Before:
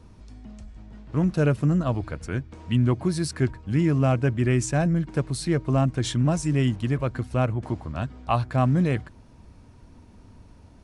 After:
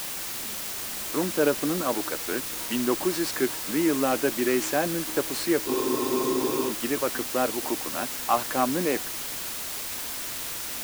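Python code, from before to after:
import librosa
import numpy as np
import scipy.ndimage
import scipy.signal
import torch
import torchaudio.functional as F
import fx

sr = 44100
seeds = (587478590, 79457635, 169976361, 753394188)

p1 = fx.cvsd(x, sr, bps=64000)
p2 = scipy.signal.sosfilt(scipy.signal.butter(4, 290.0, 'highpass', fs=sr, output='sos'), p1)
p3 = fx.high_shelf(p2, sr, hz=5200.0, db=-11.0)
p4 = fx.notch(p3, sr, hz=660.0, q=12.0)
p5 = fx.level_steps(p4, sr, step_db=22)
p6 = p4 + (p5 * 10.0 ** (-1.0 / 20.0))
p7 = fx.quant_dither(p6, sr, seeds[0], bits=6, dither='triangular')
p8 = fx.spec_freeze(p7, sr, seeds[1], at_s=5.69, hold_s=1.0)
y = p8 * 10.0 ** (2.5 / 20.0)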